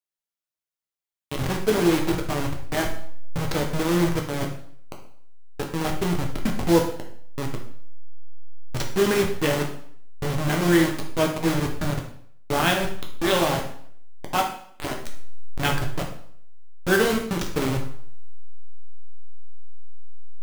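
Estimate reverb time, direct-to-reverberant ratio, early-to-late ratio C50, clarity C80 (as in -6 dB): 0.60 s, 1.0 dB, 7.0 dB, 11.0 dB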